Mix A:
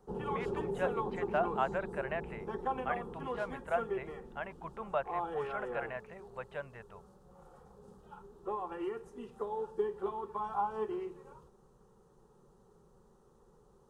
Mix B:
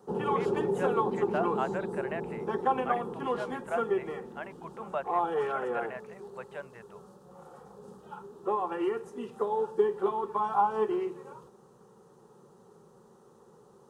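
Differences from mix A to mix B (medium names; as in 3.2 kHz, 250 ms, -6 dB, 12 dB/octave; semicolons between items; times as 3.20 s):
background +8.0 dB; master: add high-pass 150 Hz 12 dB/octave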